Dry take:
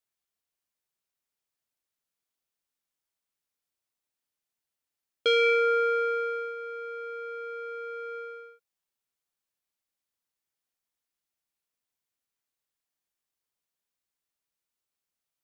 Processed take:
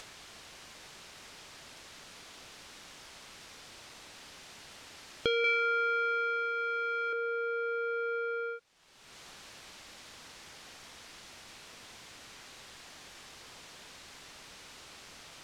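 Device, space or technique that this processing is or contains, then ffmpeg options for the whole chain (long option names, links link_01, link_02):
upward and downward compression: -filter_complex "[0:a]lowpass=5400,acompressor=mode=upward:threshold=-32dB:ratio=2.5,acompressor=threshold=-41dB:ratio=3,asettb=1/sr,asplit=3[link_01][link_02][link_03];[link_01]atrim=end=5.444[link_04];[link_02]atrim=start=5.44:end=7.13,asetpts=PTS-STARTPTS,afade=type=in:duration=0.004:curve=qsin,afade=type=out:start_time=1.686:duration=0.004:curve=qsin,tiltshelf=frequency=920:gain=-8.5[link_05];[link_03]atrim=start=7.126[link_06];[link_04][link_05]acrossfade=duration=0.004:curve1=hsin:curve2=qsin[link_07];[link_07][link_06]acrossfade=duration=0.004:curve1=qsin:curve2=hsin,volume=8dB"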